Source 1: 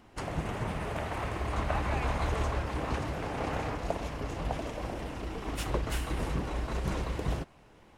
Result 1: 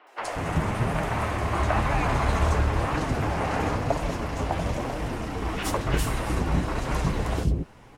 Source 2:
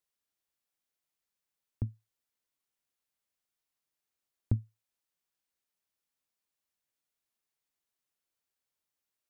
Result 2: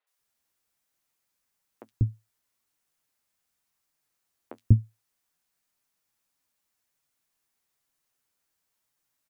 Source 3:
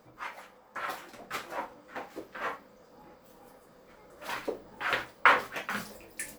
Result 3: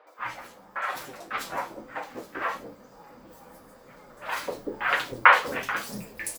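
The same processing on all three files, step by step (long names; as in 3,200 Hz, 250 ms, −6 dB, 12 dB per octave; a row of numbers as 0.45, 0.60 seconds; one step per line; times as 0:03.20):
three-band delay without the direct sound mids, highs, lows 70/190 ms, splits 450/3,300 Hz
flanger 1 Hz, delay 6.2 ms, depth 6.2 ms, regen −34%
loudness normalisation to −27 LKFS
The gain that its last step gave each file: +12.0, +13.0, +10.0 decibels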